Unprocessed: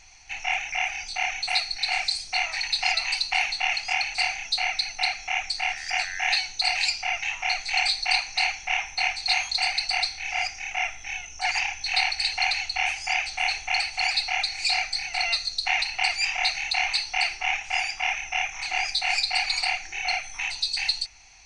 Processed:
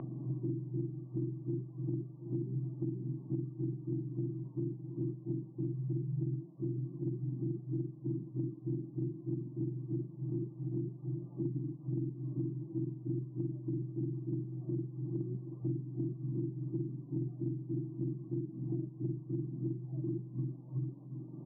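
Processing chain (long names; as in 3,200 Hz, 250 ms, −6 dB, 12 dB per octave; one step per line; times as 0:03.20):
frequency axis turned over on the octave scale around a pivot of 500 Hz
on a send: single-tap delay 727 ms −17 dB
on the sum: brick-wall band-pass 120–1,200 Hz
multiband upward and downward compressor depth 100%
level −6.5 dB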